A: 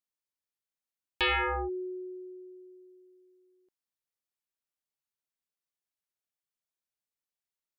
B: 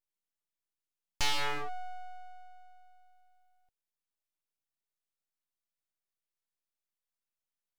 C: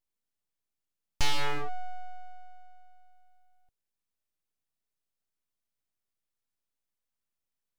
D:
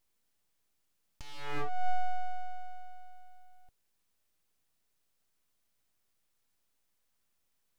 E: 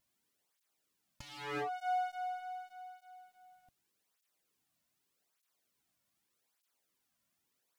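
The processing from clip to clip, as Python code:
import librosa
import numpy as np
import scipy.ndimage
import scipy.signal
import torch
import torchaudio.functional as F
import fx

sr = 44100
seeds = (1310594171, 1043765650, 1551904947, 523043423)

y1 = scipy.signal.sosfilt(scipy.signal.butter(16, 170.0, 'highpass', fs=sr, output='sos'), x)
y1 = np.abs(y1)
y2 = fx.low_shelf(y1, sr, hz=360.0, db=8.0)
y3 = fx.over_compress(y2, sr, threshold_db=-30.0, ratio=-0.5)
y3 = F.gain(torch.from_numpy(y3), 5.0).numpy()
y4 = fx.flanger_cancel(y3, sr, hz=0.83, depth_ms=2.6)
y4 = F.gain(torch.from_numpy(y4), 3.0).numpy()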